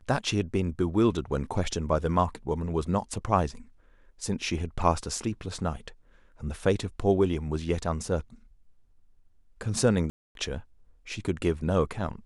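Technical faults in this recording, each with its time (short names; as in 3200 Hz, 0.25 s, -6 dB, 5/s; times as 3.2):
10.1–10.35 gap 0.252 s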